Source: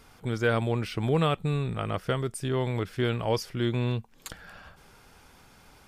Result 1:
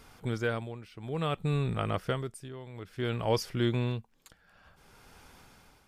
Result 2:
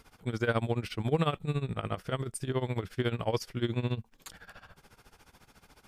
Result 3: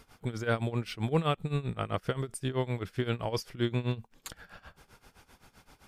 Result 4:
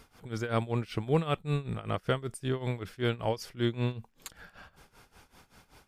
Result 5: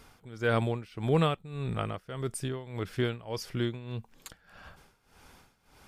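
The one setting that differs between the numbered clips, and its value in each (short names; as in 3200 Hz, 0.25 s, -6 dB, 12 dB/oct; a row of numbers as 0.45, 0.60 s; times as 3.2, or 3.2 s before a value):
tremolo, rate: 0.57, 14, 7.7, 5.2, 1.7 Hz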